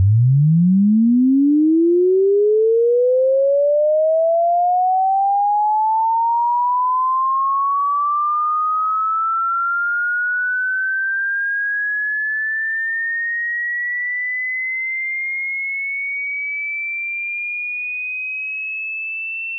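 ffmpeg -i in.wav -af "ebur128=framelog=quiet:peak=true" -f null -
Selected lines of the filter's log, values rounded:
Integrated loudness:
  I:         -17.5 LUFS
  Threshold: -27.5 LUFS
Loudness range:
  LRA:         6.3 LU
  Threshold: -37.7 LUFS
  LRA low:   -21.0 LUFS
  LRA high:  -14.8 LUFS
True peak:
  Peak:       -9.5 dBFS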